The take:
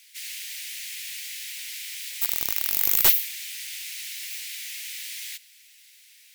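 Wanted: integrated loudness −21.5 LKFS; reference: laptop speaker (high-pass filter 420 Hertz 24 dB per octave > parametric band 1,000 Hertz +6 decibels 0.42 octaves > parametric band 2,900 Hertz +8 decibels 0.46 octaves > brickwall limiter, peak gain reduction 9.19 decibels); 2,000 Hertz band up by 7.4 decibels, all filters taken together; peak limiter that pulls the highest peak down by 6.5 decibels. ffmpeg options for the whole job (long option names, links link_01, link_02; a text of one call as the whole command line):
ffmpeg -i in.wav -af "equalizer=frequency=2000:width_type=o:gain=5,alimiter=limit=-9.5dB:level=0:latency=1,highpass=frequency=420:width=0.5412,highpass=frequency=420:width=1.3066,equalizer=frequency=1000:width_type=o:width=0.42:gain=6,equalizer=frequency=2900:width_type=o:width=0.46:gain=8,volume=8dB,alimiter=limit=-8.5dB:level=0:latency=1" out.wav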